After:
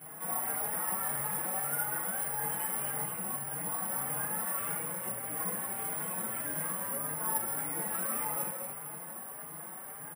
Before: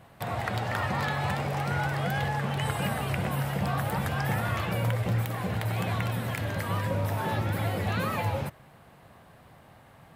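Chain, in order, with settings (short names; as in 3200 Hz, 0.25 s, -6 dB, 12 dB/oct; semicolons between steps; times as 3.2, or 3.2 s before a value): 2.97–3.59 bell 110 Hz +11.5 dB 0.7 oct; limiter -36 dBFS, peak gain reduction 21.5 dB; feedback echo 0.234 s, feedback 51%, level -7.5 dB; reverb RT60 0.60 s, pre-delay 3 ms, DRR -5.5 dB; careless resampling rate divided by 4×, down filtered, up zero stuff; endless flanger 4.5 ms +1.7 Hz; gain -7 dB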